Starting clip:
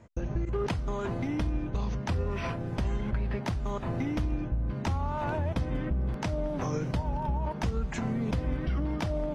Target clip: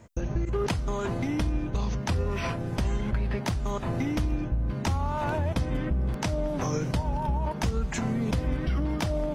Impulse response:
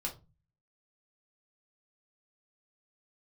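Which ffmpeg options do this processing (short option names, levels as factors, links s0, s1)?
-af "highshelf=f=5500:g=10.5,volume=1.33"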